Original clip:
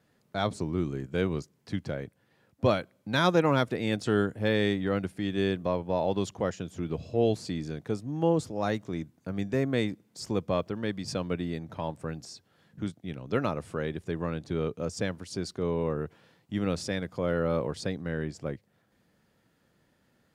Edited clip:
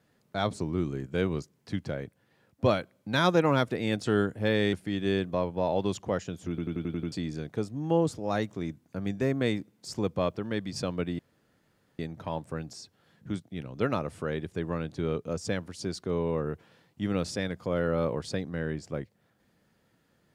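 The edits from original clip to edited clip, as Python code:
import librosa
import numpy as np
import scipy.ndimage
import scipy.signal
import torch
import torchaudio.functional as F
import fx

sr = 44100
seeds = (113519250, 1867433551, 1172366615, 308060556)

y = fx.edit(x, sr, fx.cut(start_s=4.73, length_s=0.32),
    fx.stutter_over(start_s=6.81, slice_s=0.09, count=7),
    fx.insert_room_tone(at_s=11.51, length_s=0.8), tone=tone)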